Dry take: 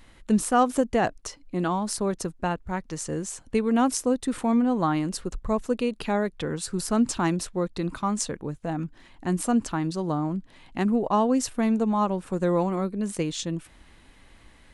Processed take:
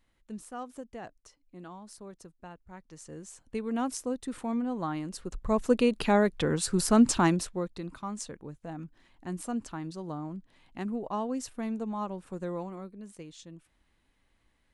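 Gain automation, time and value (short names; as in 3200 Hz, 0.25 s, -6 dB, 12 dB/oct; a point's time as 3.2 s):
2.53 s -19.5 dB
3.71 s -9 dB
5.14 s -9 dB
5.71 s +2 dB
7.19 s +2 dB
7.86 s -10.5 dB
12.36 s -10.5 dB
13.16 s -18 dB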